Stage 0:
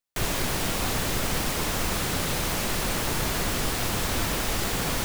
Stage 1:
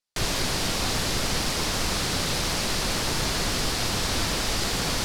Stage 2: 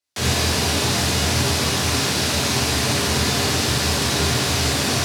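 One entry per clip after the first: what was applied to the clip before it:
low-pass 11 kHz 12 dB/octave; peaking EQ 4.7 kHz +7 dB 0.84 oct
gated-style reverb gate 110 ms flat, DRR -4.5 dB; frequency shift +73 Hz

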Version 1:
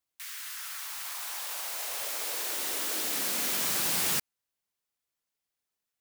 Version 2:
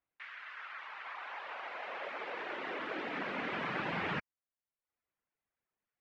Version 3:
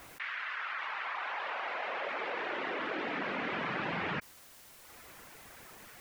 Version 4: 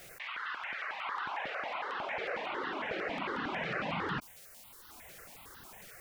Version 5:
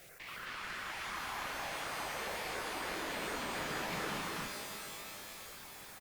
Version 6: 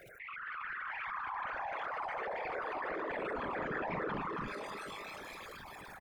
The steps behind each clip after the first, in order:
low-pass 2.3 kHz 24 dB/octave; reverb removal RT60 0.66 s; trim +3 dB
level flattener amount 70%
stepped phaser 11 Hz 270–2300 Hz; trim +3 dB
one-sided clip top -45.5 dBFS; loudspeakers at several distances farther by 72 m -9 dB, 93 m -1 dB; pitch-shifted reverb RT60 3.2 s, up +12 st, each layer -2 dB, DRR 5.5 dB; trim -4.5 dB
resonances exaggerated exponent 3; trim +1.5 dB

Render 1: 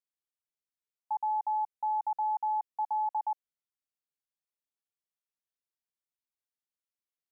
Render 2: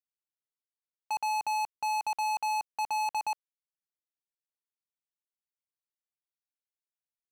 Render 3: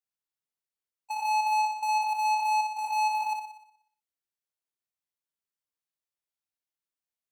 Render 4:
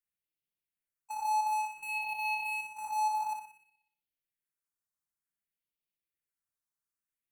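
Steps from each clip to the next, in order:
waveshaping leveller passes 5; trim -2 dB
spectrogram pixelated in time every 50 ms; flutter echo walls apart 10.4 m, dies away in 0.7 s
phase shifter stages 4, 0.56 Hz, lowest notch 500–1200 Hz; on a send at -10.5 dB: reverberation RT60 0.25 s, pre-delay 6 ms

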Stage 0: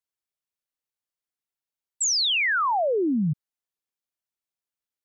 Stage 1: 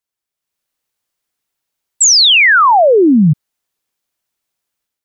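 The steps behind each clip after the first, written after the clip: level rider gain up to 9 dB; trim +6 dB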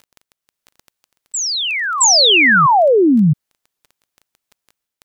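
crackle 10 per s -23 dBFS; reverse echo 668 ms -9 dB; trim -3 dB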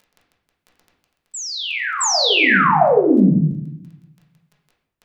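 reverberation RT60 0.75 s, pre-delay 5 ms, DRR -3.5 dB; trim -8.5 dB

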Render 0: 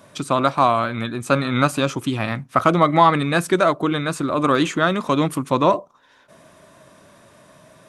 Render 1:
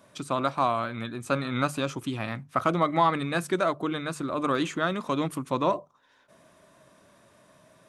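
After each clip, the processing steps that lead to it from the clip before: hum notches 50/100/150 Hz; trim -8.5 dB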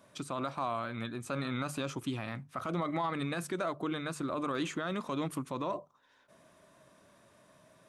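peak limiter -20.5 dBFS, peak gain reduction 11 dB; trim -4 dB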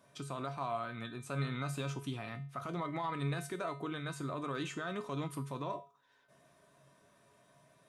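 feedback comb 140 Hz, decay 0.35 s, harmonics odd, mix 80%; trim +7 dB

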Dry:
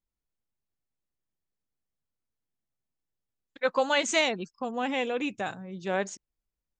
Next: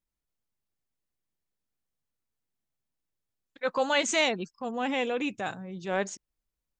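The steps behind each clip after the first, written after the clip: transient shaper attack -5 dB, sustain 0 dB; trim +1 dB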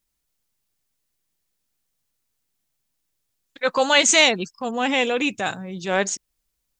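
treble shelf 2.5 kHz +8.5 dB; trim +6.5 dB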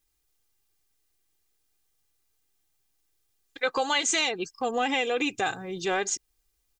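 comb 2.5 ms, depth 60%; compression 6:1, threshold -23 dBFS, peak gain reduction 12.5 dB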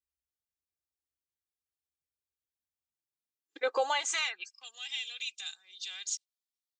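spectral noise reduction 15 dB; high-pass sweep 64 Hz -> 3.7 kHz, 2.77–4.74 s; trim -7.5 dB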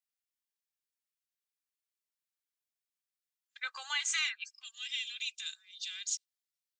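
high-pass 1.4 kHz 24 dB/octave

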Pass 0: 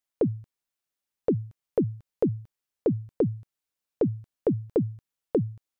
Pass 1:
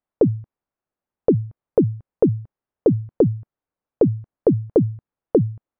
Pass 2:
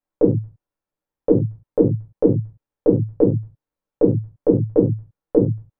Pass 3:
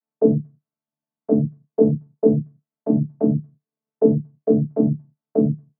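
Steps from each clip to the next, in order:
low-pass 1.1 kHz 12 dB/octave; dynamic bell 220 Hz, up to -4 dB, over -42 dBFS, Q 6.9; trim +8.5 dB
reverberation, pre-delay 4 ms, DRR -3.5 dB; trim -5.5 dB
vocoder on a held chord bare fifth, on D3

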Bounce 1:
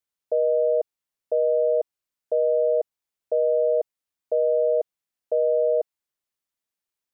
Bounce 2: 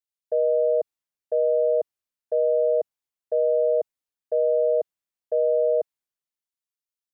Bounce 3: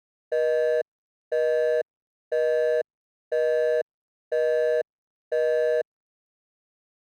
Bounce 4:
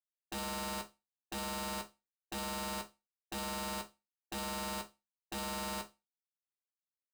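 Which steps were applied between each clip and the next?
three bands expanded up and down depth 40%
median filter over 41 samples
resampled via 8 kHz; integer overflow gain 23.5 dB; chord resonator C#2 minor, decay 0.24 s; trim -1 dB

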